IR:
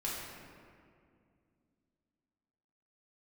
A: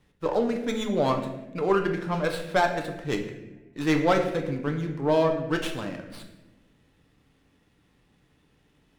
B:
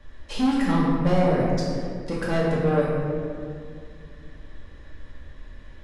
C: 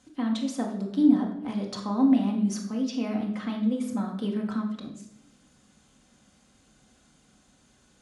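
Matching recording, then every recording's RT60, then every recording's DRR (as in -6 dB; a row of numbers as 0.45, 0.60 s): B; 1.1, 2.3, 0.80 s; 3.5, -6.5, 0.0 dB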